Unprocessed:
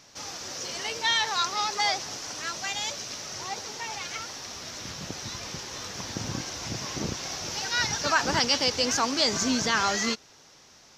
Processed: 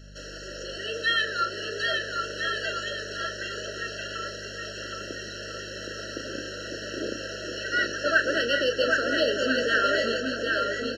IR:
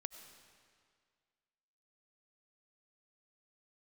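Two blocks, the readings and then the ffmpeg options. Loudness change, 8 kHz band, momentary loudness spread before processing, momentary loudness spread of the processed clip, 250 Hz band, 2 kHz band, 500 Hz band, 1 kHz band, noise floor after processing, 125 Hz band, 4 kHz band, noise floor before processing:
+0.5 dB, -10.0 dB, 12 LU, 13 LU, -1.0 dB, +5.0 dB, +7.0 dB, -2.5 dB, -39 dBFS, -4.0 dB, -2.5 dB, -55 dBFS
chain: -filter_complex "[0:a]highpass=f=330:w=0.5412,highpass=f=330:w=1.3066,highshelf=f=6100:g=-9,acrossover=split=620|3700[s0][s1][s2];[s2]acompressor=threshold=0.00562:ratio=6[s3];[s0][s1][s3]amix=inputs=3:normalize=0,aeval=exprs='val(0)+0.00316*(sin(2*PI*50*n/s)+sin(2*PI*2*50*n/s)/2+sin(2*PI*3*50*n/s)/3+sin(2*PI*4*50*n/s)/4+sin(2*PI*5*50*n/s)/5)':c=same,asplit=2[s4][s5];[s5]adynamicsmooth=sensitivity=4:basefreq=6800,volume=0.794[s6];[s4][s6]amix=inputs=2:normalize=0,asplit=2[s7][s8];[s8]adelay=34,volume=0.355[s9];[s7][s9]amix=inputs=2:normalize=0,aecho=1:1:770|1348|1781|2105|2349:0.631|0.398|0.251|0.158|0.1,afftfilt=real='re*eq(mod(floor(b*sr/1024/650),2),0)':imag='im*eq(mod(floor(b*sr/1024/650),2),0)':win_size=1024:overlap=0.75"

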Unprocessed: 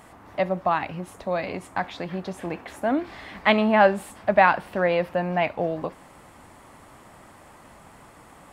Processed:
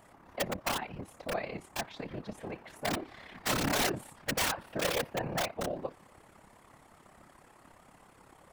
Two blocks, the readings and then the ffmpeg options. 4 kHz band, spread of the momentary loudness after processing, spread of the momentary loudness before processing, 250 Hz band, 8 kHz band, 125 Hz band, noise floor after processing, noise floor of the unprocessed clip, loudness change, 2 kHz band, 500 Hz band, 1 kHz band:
0.0 dB, 13 LU, 15 LU, -11.5 dB, no reading, -7.5 dB, -60 dBFS, -50 dBFS, -10.5 dB, -10.0 dB, -13.0 dB, -13.5 dB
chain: -af "tremolo=f=34:d=0.667,aeval=exprs='(mod(7.08*val(0)+1,2)-1)/7.08':c=same,afftfilt=real='hypot(re,im)*cos(2*PI*random(0))':imag='hypot(re,im)*sin(2*PI*random(1))':win_size=512:overlap=0.75"

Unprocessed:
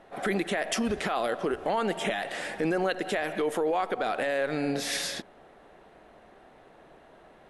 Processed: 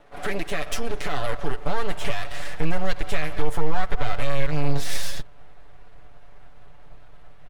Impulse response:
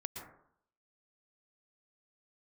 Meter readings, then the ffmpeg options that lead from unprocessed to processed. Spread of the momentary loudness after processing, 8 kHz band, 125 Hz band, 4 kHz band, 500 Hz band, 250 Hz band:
4 LU, -0.5 dB, +11.0 dB, 0.0 dB, -2.5 dB, -2.5 dB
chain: -af "aeval=exprs='max(val(0),0)':c=same,asubboost=boost=9:cutoff=93,aecho=1:1:6.9:0.65,volume=1.26"

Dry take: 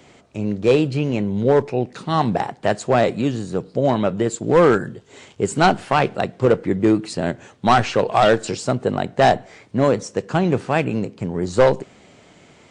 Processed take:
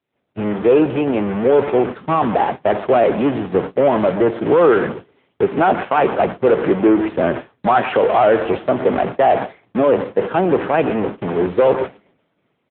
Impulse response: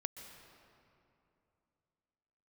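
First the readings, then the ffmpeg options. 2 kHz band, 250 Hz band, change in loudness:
+0.5 dB, +2.5 dB, +3.0 dB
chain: -filter_complex "[0:a]aeval=exprs='val(0)+0.5*0.0944*sgn(val(0))':c=same,aecho=1:1:131|262|393|524:0.126|0.0655|0.034|0.0177,agate=range=0.00112:threshold=0.0794:ratio=16:detection=peak,acrossover=split=280|850[s0][s1][s2];[s0]acompressor=threshold=0.0251:ratio=16[s3];[s2]aemphasis=mode=reproduction:type=riaa[s4];[s3][s1][s4]amix=inputs=3:normalize=0,acrossover=split=3000[s5][s6];[s6]acompressor=threshold=0.00355:ratio=4:attack=1:release=60[s7];[s5][s7]amix=inputs=2:normalize=0,asoftclip=type=tanh:threshold=0.631,alimiter=limit=0.266:level=0:latency=1:release=10,equalizer=f=77:w=1.2:g=-4,aeval=exprs='0.282*(cos(1*acos(clip(val(0)/0.282,-1,1)))-cos(1*PI/2))+0.0224*(cos(6*acos(clip(val(0)/0.282,-1,1)))-cos(6*PI/2))':c=same,volume=2" -ar 8000 -c:a libopencore_amrnb -b:a 7950

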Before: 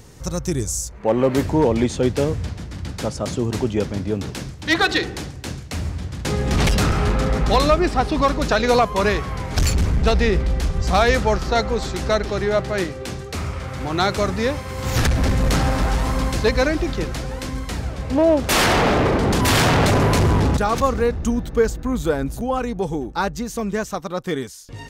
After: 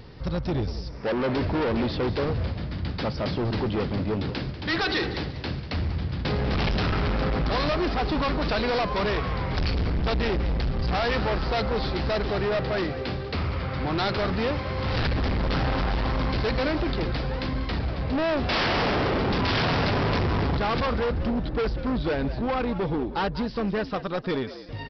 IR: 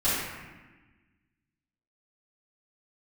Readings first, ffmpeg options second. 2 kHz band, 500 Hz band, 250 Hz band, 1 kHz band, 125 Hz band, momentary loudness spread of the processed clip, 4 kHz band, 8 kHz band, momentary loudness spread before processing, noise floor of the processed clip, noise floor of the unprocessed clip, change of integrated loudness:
-5.5 dB, -6.5 dB, -5.5 dB, -6.5 dB, -5.0 dB, 6 LU, -5.0 dB, under -25 dB, 12 LU, -35 dBFS, -35 dBFS, -6.0 dB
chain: -filter_complex "[0:a]aresample=11025,asoftclip=type=hard:threshold=0.0708,aresample=44100,asplit=4[s0][s1][s2][s3];[s1]adelay=192,afreqshift=74,volume=0.2[s4];[s2]adelay=384,afreqshift=148,volume=0.0661[s5];[s3]adelay=576,afreqshift=222,volume=0.0216[s6];[s0][s4][s5][s6]amix=inputs=4:normalize=0"

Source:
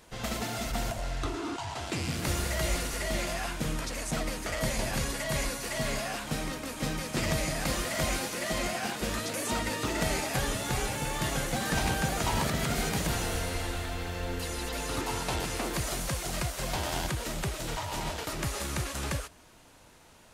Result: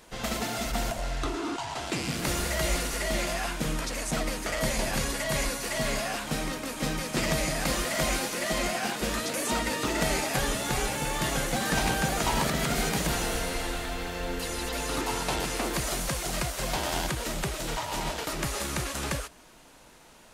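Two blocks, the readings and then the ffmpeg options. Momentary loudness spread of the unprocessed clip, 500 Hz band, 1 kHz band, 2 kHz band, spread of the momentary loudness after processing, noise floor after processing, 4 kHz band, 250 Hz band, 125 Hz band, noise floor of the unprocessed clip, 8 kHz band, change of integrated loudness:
5 LU, +3.0 dB, +3.0 dB, +3.0 dB, 6 LU, -53 dBFS, +3.0 dB, +2.5 dB, -0.5 dB, -56 dBFS, +3.0 dB, +2.5 dB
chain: -af "equalizer=f=92:w=2.6:g=-13,volume=1.41"

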